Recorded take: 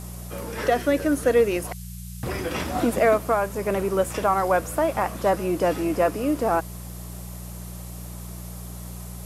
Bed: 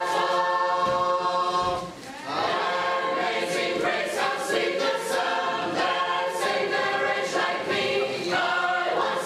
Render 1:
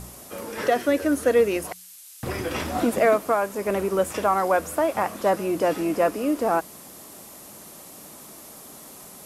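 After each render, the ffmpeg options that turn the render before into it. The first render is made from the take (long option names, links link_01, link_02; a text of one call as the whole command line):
ffmpeg -i in.wav -af "bandreject=frequency=60:width_type=h:width=4,bandreject=frequency=120:width_type=h:width=4,bandreject=frequency=180:width_type=h:width=4" out.wav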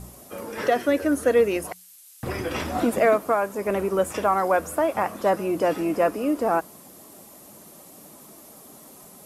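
ffmpeg -i in.wav -af "afftdn=noise_reduction=6:noise_floor=-45" out.wav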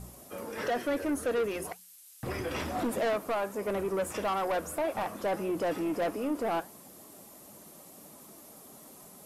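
ffmpeg -i in.wav -af "asoftclip=type=tanh:threshold=-21dB,flanger=delay=1.4:depth=5.7:regen=-85:speed=1.6:shape=sinusoidal" out.wav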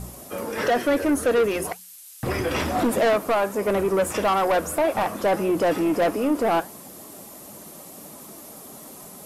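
ffmpeg -i in.wav -af "volume=9.5dB" out.wav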